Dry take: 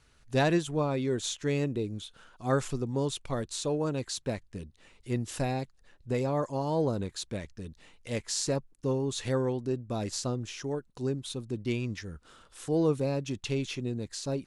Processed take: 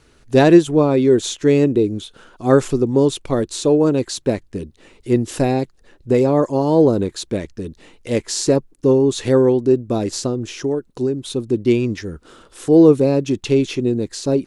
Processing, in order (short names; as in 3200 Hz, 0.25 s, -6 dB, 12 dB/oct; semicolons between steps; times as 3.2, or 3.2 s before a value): bell 350 Hz +10 dB 1.3 oct; 9.97–11.35 compressor 5:1, threshold -25 dBFS, peak gain reduction 6.5 dB; gain +8.5 dB